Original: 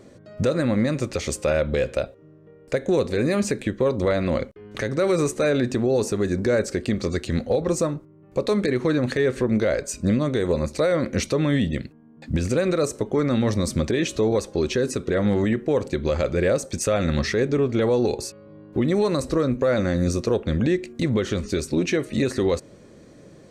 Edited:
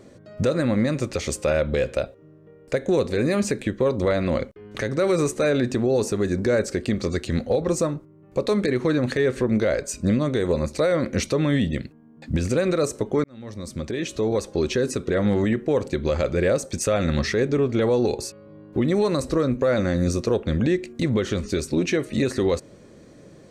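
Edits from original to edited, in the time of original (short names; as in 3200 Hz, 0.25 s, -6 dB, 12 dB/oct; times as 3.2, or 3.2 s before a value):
13.24–14.56 fade in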